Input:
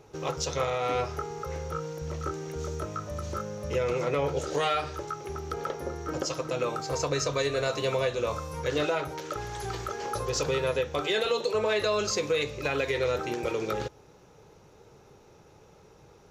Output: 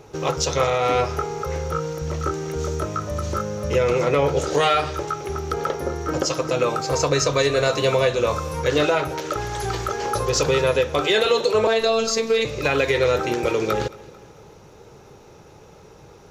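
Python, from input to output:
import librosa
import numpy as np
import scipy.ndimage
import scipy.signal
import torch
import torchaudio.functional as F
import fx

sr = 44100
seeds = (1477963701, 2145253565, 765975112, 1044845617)

y = fx.robotise(x, sr, hz=225.0, at=(11.67, 12.45))
y = fx.echo_feedback(y, sr, ms=222, feedback_pct=48, wet_db=-21)
y = y * librosa.db_to_amplitude(8.5)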